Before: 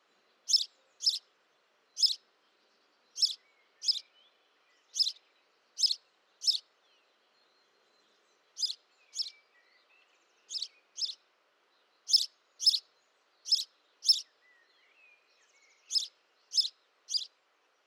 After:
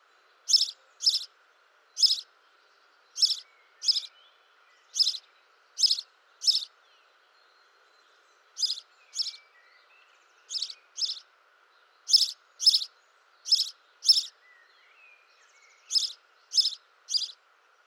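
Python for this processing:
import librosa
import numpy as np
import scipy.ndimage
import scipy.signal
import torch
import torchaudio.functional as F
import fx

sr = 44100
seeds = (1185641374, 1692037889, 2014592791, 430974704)

p1 = scipy.signal.sosfilt(scipy.signal.butter(4, 380.0, 'highpass', fs=sr, output='sos'), x)
p2 = fx.peak_eq(p1, sr, hz=1400.0, db=10.0, octaves=0.4)
p3 = p2 + fx.echo_single(p2, sr, ms=76, db=-8.5, dry=0)
y = p3 * librosa.db_to_amplitude(4.5)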